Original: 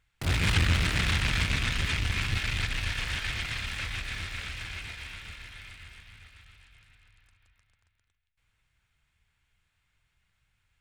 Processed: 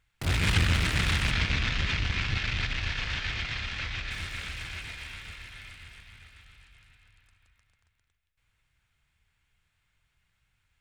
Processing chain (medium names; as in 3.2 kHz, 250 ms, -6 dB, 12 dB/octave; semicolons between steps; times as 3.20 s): 1.31–4.11 s: low-pass 6 kHz 24 dB/octave; reverberation RT60 1.7 s, pre-delay 51 ms, DRR 12 dB